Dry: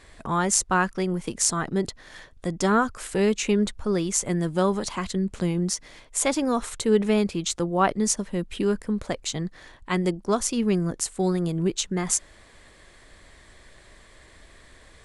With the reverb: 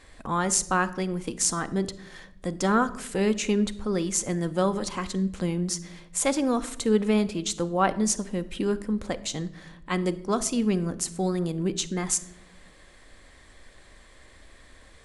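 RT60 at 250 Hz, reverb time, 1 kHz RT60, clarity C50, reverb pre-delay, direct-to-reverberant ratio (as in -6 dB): 1.4 s, 0.85 s, 0.65 s, 16.5 dB, 4 ms, 11.0 dB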